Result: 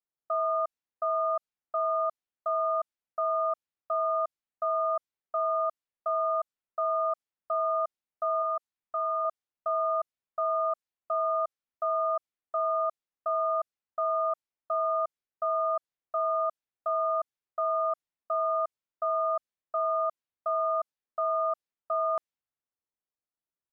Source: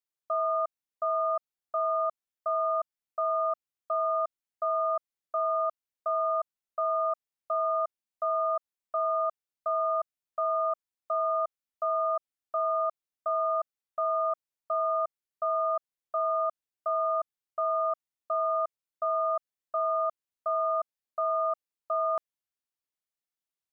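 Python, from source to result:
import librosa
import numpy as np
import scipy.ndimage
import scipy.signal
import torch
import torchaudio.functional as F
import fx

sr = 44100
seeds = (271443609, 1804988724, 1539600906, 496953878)

y = fx.env_lowpass(x, sr, base_hz=1200.0, full_db=-27.0)
y = fx.peak_eq(y, sr, hz=550.0, db=-9.5, octaves=0.37, at=(8.42, 9.25))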